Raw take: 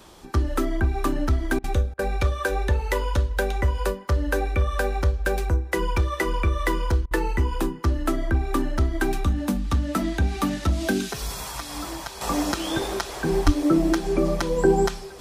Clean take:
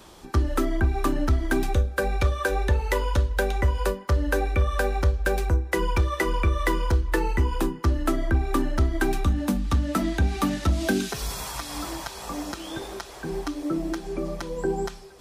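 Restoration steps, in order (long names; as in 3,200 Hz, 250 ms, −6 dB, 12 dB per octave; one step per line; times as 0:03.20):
high-pass at the plosives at 0:13.45
repair the gap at 0:01.59/0:01.94/0:07.06, 49 ms
level 0 dB, from 0:12.21 −8 dB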